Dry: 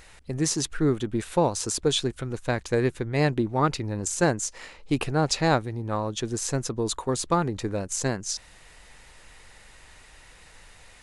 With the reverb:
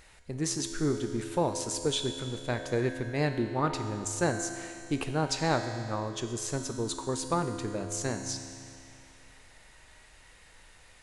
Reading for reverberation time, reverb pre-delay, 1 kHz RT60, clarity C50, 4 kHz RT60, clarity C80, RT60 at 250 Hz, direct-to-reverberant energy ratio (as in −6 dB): 2.4 s, 3 ms, 2.4 s, 7.0 dB, 2.3 s, 8.0 dB, 2.4 s, 5.5 dB